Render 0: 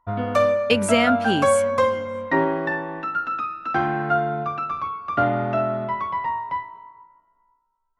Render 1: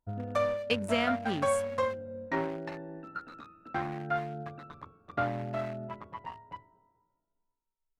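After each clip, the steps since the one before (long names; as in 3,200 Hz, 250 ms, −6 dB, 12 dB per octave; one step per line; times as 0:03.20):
adaptive Wiener filter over 41 samples
dynamic equaliser 300 Hz, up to −4 dB, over −32 dBFS, Q 0.76
level −7.5 dB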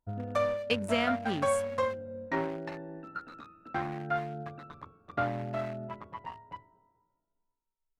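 no processing that can be heard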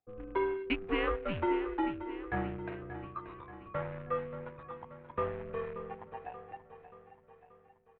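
on a send: repeating echo 581 ms, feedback 53%, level −12 dB
on the sum: single-sideband voice off tune −200 Hz 260–3,200 Hz
level −2.5 dB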